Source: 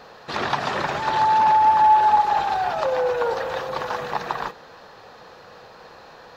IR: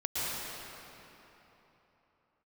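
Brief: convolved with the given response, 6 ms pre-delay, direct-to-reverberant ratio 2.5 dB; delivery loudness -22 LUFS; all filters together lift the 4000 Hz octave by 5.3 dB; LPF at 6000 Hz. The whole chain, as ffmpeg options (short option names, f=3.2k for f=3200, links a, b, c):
-filter_complex "[0:a]lowpass=6k,equalizer=f=4k:t=o:g=7,asplit=2[a][b];[1:a]atrim=start_sample=2205,adelay=6[c];[b][c]afir=irnorm=-1:irlink=0,volume=-10.5dB[d];[a][d]amix=inputs=2:normalize=0,volume=-4.5dB"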